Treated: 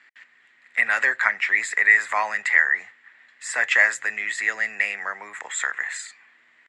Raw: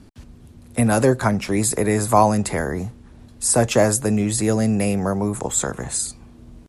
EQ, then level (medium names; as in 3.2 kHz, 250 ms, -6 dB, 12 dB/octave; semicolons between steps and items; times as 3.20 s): resonant high-pass 1.9 kHz, resonance Q 9; resonant low-pass 7.3 kHz, resonance Q 8.7; distance through air 450 m; +4.5 dB